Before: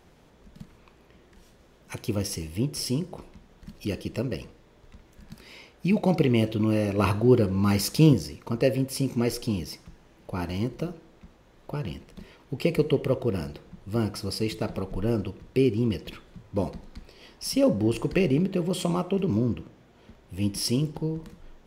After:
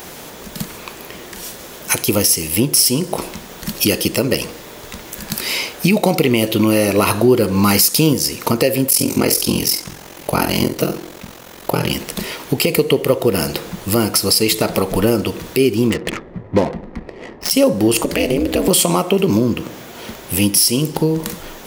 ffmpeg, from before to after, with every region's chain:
-filter_complex "[0:a]asettb=1/sr,asplit=3[s0][s1][s2];[s0]atrim=end=8.894[s3];[s1]atrim=start=8.89:end=11.9,asetpts=PTS-STARTPTS,afade=t=in:d=0.004:c=qsin,afade=t=out:st=3.006:d=0.004:c=qsin,aeval=exprs='val(0)*sin(2*PI*22*n/s)':c=same,asplit=2[s4][s5];[s5]adelay=49,volume=0.398[s6];[s4][s6]amix=inputs=2:normalize=0,atrim=end_sample=132741[s7];[s2]atrim=start=11.896[s8];[s3][s7]acrossfade=d=0.004:c1=hsin:c2=qsin[s9];[s9][s8]acrossfade=d=0.004:c1=qsin:c2=hsin,asettb=1/sr,asplit=3[s10][s11][s12];[s10]atrim=end=15.904[s13];[s11]atrim=start=15.9:end=17.51,asetpts=PTS-STARTPTS,afade=t=in:d=0.004:c=qsin,afade=t=out:st=1.606:d=0.004:c=qsin,equalizer=f=1900:t=o:w=0.54:g=9.5,bandreject=f=1500:w=8.4,adynamicsmooth=sensitivity=5:basefreq=500[s14];[s12]atrim=start=17.506[s15];[s13][s14]acrossfade=d=0.004:c1=hsin:c2=qsin[s16];[s16][s15]acrossfade=d=0.004:c1=qsin:c2=hsin,asettb=1/sr,asplit=3[s17][s18][s19];[s17]atrim=end=18.024[s20];[s18]atrim=start=18.02:end=18.68,asetpts=PTS-STARTPTS,afade=t=in:d=0.004:c=qsin,afade=t=out:st=0.656:d=0.004:c=qsin,acompressor=threshold=0.0631:ratio=3:attack=3.2:release=140:knee=1:detection=peak,aeval=exprs='val(0)*sin(2*PI*120*n/s)':c=same[s21];[s19]atrim=start=18.676[s22];[s20][s21]acrossfade=d=0.004:c1=hsin:c2=qsin[s23];[s23][s22]acrossfade=d=0.004:c1=qsin:c2=hsin,aemphasis=mode=production:type=bsi,acompressor=threshold=0.0126:ratio=3,alimiter=level_in=17.8:limit=0.891:release=50:level=0:latency=1,volume=0.891"

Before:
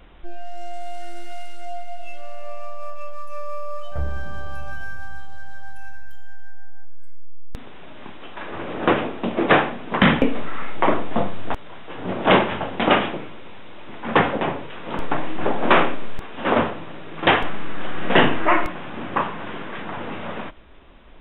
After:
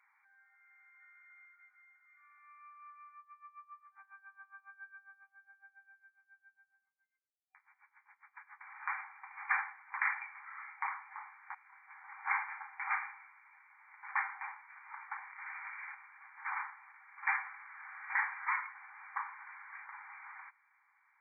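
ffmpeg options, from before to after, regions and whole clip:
-filter_complex "[0:a]asettb=1/sr,asplit=3[s0][s1][s2];[s0]atrim=end=3.184[s3];[s1]atrim=start=3.18:end=8.61,asetpts=PTS-STARTPTS,afade=t=in:d=0.004:c=qsin,afade=t=out:st=5.426:d=0.004:c=qsin,asplit=2[s4][s5];[s5]adelay=12,volume=0.447[s6];[s4][s6]amix=inputs=2:normalize=0,atrim=end_sample=239463,aeval=exprs='val(0)*pow(10,-20*(0.5-0.5*cos(2*PI*7.3*n/s))/20)':c=same[s7];[s2]atrim=start=8.606[s8];[s3][s7]acrossfade=d=0.004:c1=hsin:c2=qsin[s9];[s9][s8]acrossfade=d=0.004:c1=qsin:c2=hsin,asettb=1/sr,asplit=3[s10][s11][s12];[s10]atrim=end=15.284[s13];[s11]atrim=start=15.28:end=16.28,asetpts=PTS-STARTPTS,afade=t=in:d=0.004:c=qsin,afade=t=out:st=0.996:d=0.004:c=qsin,acompressor=threshold=0.158:ratio=12:attack=3.2:release=140:knee=1:detection=peak,aeval=exprs='(mod(14.1*val(0)+1,2)-1)/14.1':c=same[s14];[s12]atrim=start=16.276[s15];[s13][s14]acrossfade=d=0.004:c1=hsin:c2=qsin[s16];[s16][s15]acrossfade=d=0.004:c1=qsin:c2=hsin,afftfilt=real='re*between(b*sr/4096,760,2400)':imag='im*between(b*sr/4096,760,2400)':win_size=4096:overlap=0.75,aderivative"

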